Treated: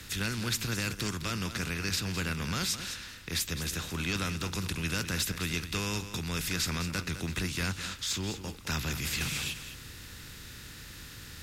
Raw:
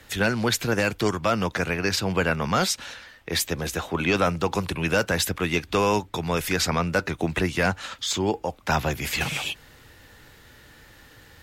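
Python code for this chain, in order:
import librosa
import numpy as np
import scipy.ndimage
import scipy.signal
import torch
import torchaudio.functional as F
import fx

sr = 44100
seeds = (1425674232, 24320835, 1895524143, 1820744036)

p1 = fx.bin_compress(x, sr, power=0.6)
p2 = fx.tone_stack(p1, sr, knobs='6-0-2')
p3 = p2 + fx.echo_single(p2, sr, ms=208, db=-11.0, dry=0)
y = p3 * librosa.db_to_amplitude(6.5)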